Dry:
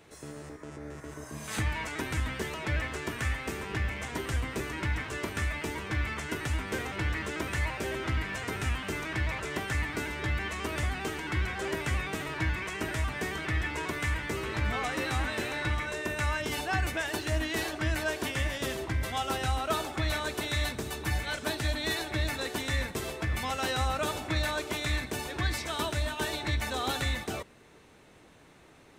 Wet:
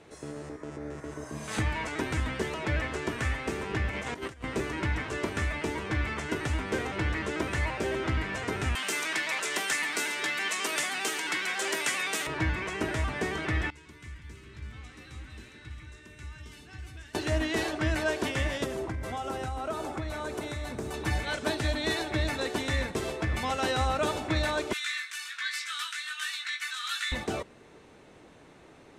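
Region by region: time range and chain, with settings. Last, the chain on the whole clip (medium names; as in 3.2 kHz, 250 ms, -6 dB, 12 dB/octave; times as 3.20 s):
3.91–4.44 s: bass shelf 98 Hz -6 dB + compressor with a negative ratio -39 dBFS, ratio -0.5
8.75–12.27 s: steep high-pass 150 Hz + tilt EQ +4.5 dB/octave
13.70–17.15 s: amplifier tone stack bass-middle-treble 6-0-2 + echo whose repeats swap between lows and highs 165 ms, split 1.4 kHz, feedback 60%, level -4 dB
18.64–20.94 s: band-stop 1.8 kHz, Q 26 + compression 4:1, threshold -32 dBFS + peaking EQ 3.5 kHz -7 dB 1.5 oct
24.73–27.12 s: steep high-pass 1.3 kHz 48 dB/octave + doubling 18 ms -4.5 dB
whole clip: low-pass 9.7 kHz 12 dB/octave; peaking EQ 420 Hz +4.5 dB 2.6 oct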